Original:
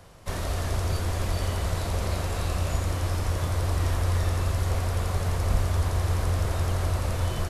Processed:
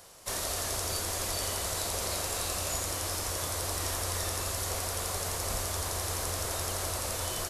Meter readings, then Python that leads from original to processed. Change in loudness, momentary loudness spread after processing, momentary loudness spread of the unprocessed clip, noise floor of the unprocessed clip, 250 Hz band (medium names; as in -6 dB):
-4.0 dB, 1 LU, 3 LU, -31 dBFS, -8.5 dB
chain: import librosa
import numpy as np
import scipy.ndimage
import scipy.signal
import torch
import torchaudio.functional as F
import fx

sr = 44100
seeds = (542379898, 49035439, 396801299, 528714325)

y = fx.bass_treble(x, sr, bass_db=-12, treble_db=12)
y = y * 10.0 ** (-2.5 / 20.0)